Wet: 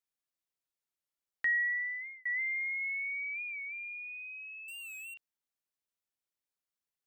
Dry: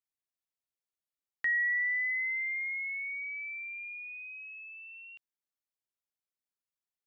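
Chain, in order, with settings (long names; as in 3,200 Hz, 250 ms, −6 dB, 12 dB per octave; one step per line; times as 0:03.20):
0:01.49–0:02.26: fade out
0:02.81–0:03.43: parametric band 1,100 Hz +10 dB 0.64 octaves
0:04.68–0:05.14: leveller curve on the samples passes 5
wow of a warped record 45 rpm, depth 100 cents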